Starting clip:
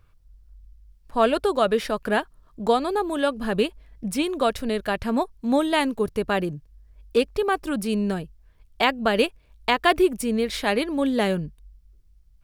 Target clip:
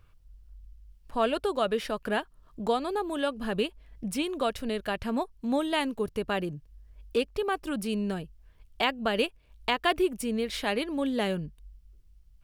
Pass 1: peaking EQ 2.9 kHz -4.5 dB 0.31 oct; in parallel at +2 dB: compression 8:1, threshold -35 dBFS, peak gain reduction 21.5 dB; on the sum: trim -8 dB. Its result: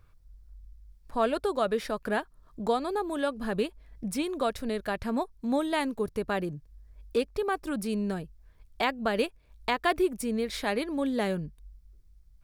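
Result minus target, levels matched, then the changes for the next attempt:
4 kHz band -4.0 dB
change: peaking EQ 2.9 kHz +4 dB 0.31 oct

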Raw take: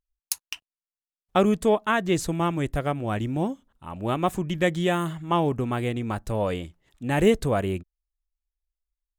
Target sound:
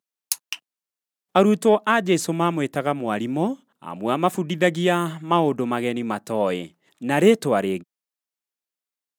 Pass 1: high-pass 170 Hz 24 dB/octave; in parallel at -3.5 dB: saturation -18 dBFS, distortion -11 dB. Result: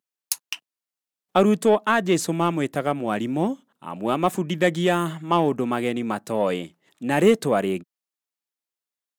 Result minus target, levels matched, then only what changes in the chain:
saturation: distortion +13 dB
change: saturation -7.5 dBFS, distortion -25 dB

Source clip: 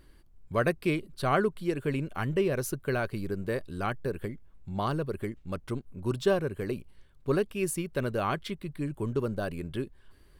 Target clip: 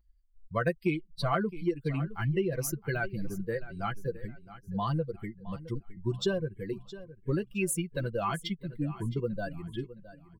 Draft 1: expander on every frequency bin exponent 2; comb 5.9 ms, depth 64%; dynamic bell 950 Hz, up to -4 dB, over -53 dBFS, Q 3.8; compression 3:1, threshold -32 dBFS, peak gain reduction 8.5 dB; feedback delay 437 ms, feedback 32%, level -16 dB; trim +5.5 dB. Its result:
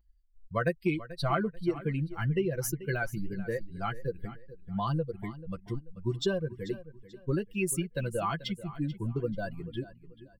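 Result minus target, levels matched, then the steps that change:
echo 228 ms early
change: feedback delay 665 ms, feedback 32%, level -16 dB

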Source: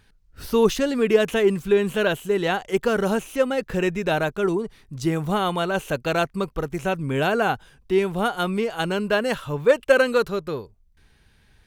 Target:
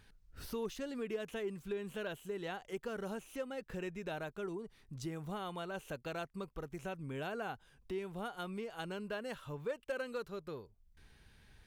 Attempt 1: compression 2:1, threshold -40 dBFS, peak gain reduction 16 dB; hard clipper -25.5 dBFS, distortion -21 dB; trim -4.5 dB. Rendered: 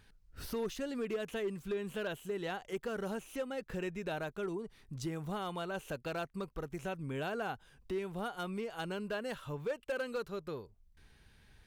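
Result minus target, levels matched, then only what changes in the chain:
compression: peak gain reduction -3.5 dB
change: compression 2:1, threshold -46.5 dBFS, peak gain reduction 19 dB

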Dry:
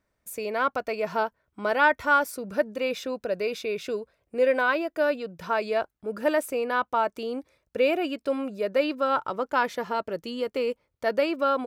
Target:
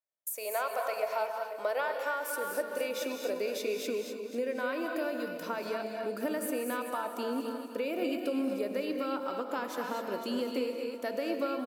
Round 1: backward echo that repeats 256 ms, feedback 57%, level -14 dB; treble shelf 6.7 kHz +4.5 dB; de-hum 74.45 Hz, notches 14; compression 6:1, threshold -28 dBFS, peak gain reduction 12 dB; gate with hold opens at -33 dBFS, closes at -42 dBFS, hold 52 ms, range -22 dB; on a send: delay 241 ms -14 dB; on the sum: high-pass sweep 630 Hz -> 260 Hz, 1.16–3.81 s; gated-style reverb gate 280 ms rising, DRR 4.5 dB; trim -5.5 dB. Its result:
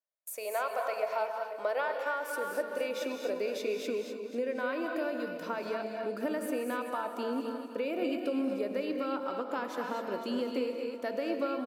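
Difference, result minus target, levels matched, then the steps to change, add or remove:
8 kHz band -5.0 dB
change: treble shelf 6.7 kHz +15.5 dB

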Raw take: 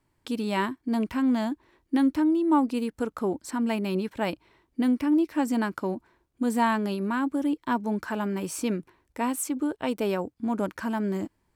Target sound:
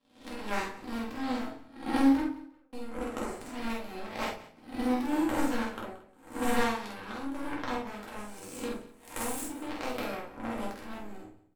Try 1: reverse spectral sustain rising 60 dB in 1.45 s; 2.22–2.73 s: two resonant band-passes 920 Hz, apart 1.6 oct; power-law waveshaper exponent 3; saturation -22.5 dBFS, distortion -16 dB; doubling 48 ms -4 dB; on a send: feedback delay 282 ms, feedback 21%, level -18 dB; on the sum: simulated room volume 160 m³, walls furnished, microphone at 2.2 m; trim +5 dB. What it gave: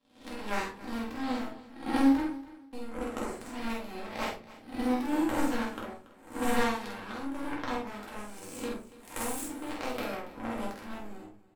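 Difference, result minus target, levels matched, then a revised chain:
echo 105 ms late
reverse spectral sustain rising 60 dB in 1.45 s; 2.22–2.73 s: two resonant band-passes 920 Hz, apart 1.6 oct; power-law waveshaper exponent 3; saturation -22.5 dBFS, distortion -16 dB; doubling 48 ms -4 dB; on a send: feedback delay 177 ms, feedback 21%, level -18 dB; on the sum: simulated room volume 160 m³, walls furnished, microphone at 2.2 m; trim +5 dB

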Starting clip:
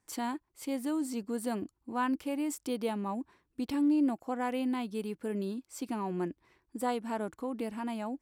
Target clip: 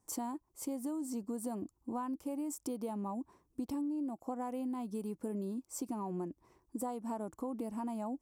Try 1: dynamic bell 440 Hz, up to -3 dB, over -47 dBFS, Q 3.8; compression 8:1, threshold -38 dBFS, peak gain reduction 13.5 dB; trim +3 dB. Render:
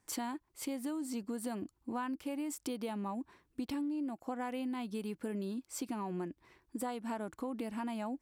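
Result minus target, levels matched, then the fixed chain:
2 kHz band +11.5 dB
dynamic bell 440 Hz, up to -3 dB, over -47 dBFS, Q 3.8; compression 8:1, threshold -38 dBFS, peak gain reduction 13.5 dB; high-order bell 2.5 kHz -12.5 dB 1.9 oct; trim +3 dB

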